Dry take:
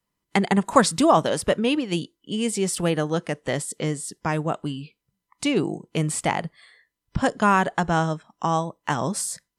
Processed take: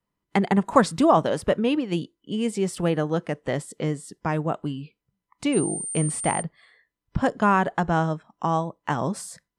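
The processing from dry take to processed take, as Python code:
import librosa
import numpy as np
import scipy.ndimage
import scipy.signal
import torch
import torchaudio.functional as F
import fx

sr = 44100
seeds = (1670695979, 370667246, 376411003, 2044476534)

y = fx.high_shelf(x, sr, hz=2900.0, db=-10.5)
y = fx.dmg_tone(y, sr, hz=8900.0, level_db=-29.0, at=(5.52, 6.41), fade=0.02)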